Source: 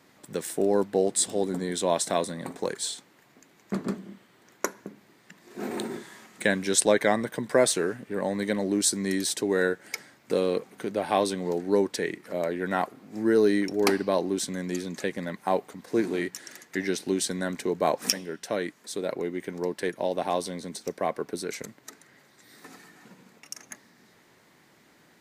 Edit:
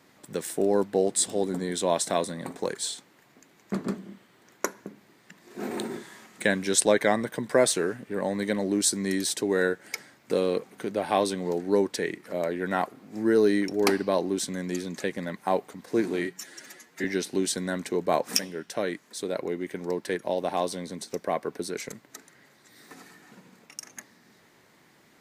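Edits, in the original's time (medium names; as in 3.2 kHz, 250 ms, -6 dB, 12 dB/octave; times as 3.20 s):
16.25–16.78 s: stretch 1.5×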